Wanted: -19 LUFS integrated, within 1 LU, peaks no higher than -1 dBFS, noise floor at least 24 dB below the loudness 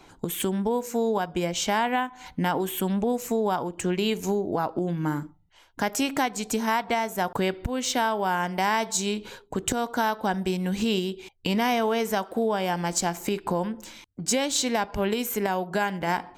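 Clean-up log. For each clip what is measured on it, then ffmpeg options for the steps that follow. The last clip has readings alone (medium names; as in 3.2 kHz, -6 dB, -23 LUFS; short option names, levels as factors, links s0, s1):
loudness -26.5 LUFS; peak level -10.0 dBFS; loudness target -19.0 LUFS
-> -af "volume=2.37"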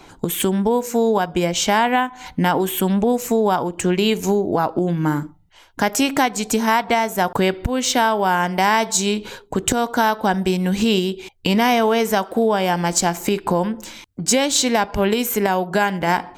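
loudness -19.0 LUFS; peak level -2.5 dBFS; noise floor -48 dBFS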